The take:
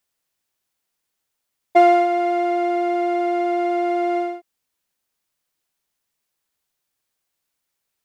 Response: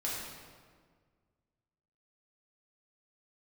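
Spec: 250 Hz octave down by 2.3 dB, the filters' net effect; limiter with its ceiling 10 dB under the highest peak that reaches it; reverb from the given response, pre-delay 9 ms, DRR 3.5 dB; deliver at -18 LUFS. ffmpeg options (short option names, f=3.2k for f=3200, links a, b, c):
-filter_complex "[0:a]equalizer=f=250:t=o:g=-4.5,alimiter=limit=-15.5dB:level=0:latency=1,asplit=2[a][b];[1:a]atrim=start_sample=2205,adelay=9[c];[b][c]afir=irnorm=-1:irlink=0,volume=-7.5dB[d];[a][d]amix=inputs=2:normalize=0,volume=5dB"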